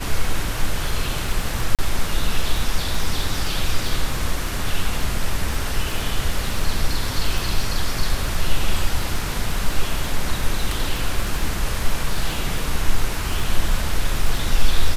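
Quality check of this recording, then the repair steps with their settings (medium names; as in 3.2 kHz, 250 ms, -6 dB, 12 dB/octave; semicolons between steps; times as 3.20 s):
crackle 23 per s -23 dBFS
1.75–1.79 s: dropout 37 ms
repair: de-click; interpolate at 1.75 s, 37 ms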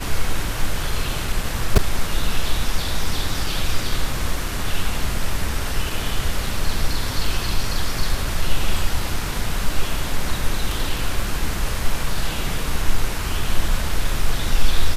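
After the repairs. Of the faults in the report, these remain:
nothing left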